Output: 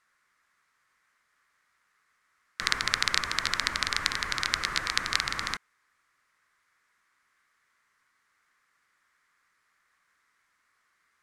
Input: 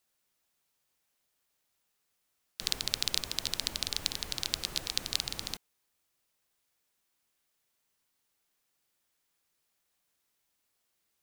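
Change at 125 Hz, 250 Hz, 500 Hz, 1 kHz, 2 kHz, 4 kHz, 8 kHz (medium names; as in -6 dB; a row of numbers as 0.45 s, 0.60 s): +3.0 dB, +3.0 dB, +3.0 dB, +15.0 dB, +15.0 dB, +3.0 dB, +1.5 dB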